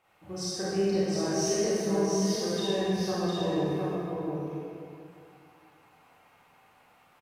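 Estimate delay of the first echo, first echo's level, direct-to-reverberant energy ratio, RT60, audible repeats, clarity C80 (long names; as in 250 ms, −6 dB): 708 ms, −4.0 dB, −11.0 dB, 2.3 s, 1, −4.5 dB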